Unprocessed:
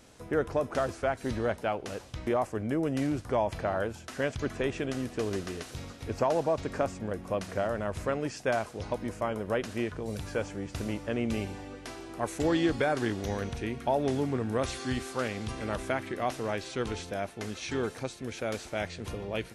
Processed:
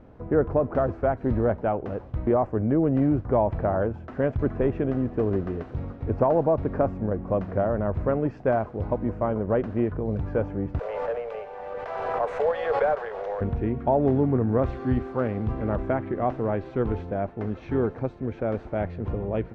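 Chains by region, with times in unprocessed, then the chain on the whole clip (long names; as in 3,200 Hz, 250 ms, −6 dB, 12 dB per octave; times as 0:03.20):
0:10.79–0:13.41: Butterworth high-pass 440 Hz 96 dB per octave + log-companded quantiser 4 bits + background raised ahead of every attack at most 21 dB per second
whole clip: low-pass filter 1,200 Hz 12 dB per octave; spectral tilt −1.5 dB per octave; level +5 dB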